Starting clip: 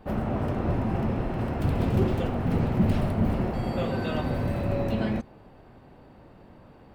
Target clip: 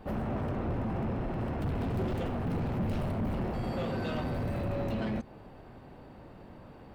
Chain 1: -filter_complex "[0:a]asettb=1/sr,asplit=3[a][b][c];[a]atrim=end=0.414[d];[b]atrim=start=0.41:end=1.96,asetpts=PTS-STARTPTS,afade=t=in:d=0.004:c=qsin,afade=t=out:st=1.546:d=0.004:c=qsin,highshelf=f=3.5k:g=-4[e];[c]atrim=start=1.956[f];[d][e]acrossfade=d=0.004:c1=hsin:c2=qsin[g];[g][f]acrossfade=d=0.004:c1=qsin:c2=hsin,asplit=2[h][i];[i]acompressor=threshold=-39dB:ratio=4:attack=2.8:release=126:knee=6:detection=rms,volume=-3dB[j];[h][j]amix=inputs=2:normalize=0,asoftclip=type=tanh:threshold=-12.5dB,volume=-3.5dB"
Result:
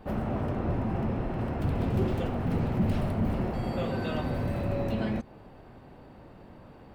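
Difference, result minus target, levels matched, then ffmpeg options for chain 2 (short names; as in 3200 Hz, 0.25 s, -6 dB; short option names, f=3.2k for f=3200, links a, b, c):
soft clip: distortion -14 dB
-filter_complex "[0:a]asettb=1/sr,asplit=3[a][b][c];[a]atrim=end=0.414[d];[b]atrim=start=0.41:end=1.96,asetpts=PTS-STARTPTS,afade=t=in:d=0.004:c=qsin,afade=t=out:st=1.546:d=0.004:c=qsin,highshelf=f=3.5k:g=-4[e];[c]atrim=start=1.956[f];[d][e]acrossfade=d=0.004:c1=hsin:c2=qsin[g];[g][f]acrossfade=d=0.004:c1=qsin:c2=hsin,asplit=2[h][i];[i]acompressor=threshold=-39dB:ratio=4:attack=2.8:release=126:knee=6:detection=rms,volume=-3dB[j];[h][j]amix=inputs=2:normalize=0,asoftclip=type=tanh:threshold=-24dB,volume=-3.5dB"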